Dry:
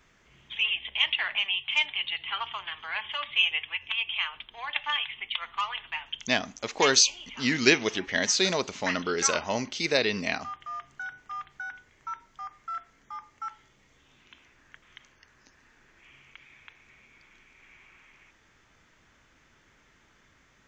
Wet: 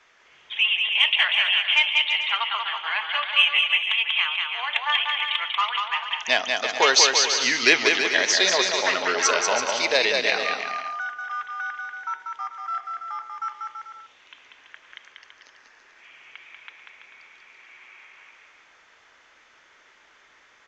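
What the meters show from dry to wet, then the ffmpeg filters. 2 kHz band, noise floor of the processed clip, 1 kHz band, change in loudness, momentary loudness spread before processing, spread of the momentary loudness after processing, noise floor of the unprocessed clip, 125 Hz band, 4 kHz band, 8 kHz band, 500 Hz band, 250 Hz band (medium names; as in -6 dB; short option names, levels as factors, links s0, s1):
+8.0 dB, -57 dBFS, +7.5 dB, +6.0 dB, 17 LU, 15 LU, -63 dBFS, under -10 dB, +7.5 dB, +4.0 dB, +4.0 dB, -4.0 dB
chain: -filter_complex "[0:a]acontrast=84,acrossover=split=430 6900:gain=0.0794 1 0.0631[s0][s1][s2];[s0][s1][s2]amix=inputs=3:normalize=0,asplit=2[s3][s4];[s4]aecho=0:1:190|332.5|439.4|519.5|579.6:0.631|0.398|0.251|0.158|0.1[s5];[s3][s5]amix=inputs=2:normalize=0,volume=0.891"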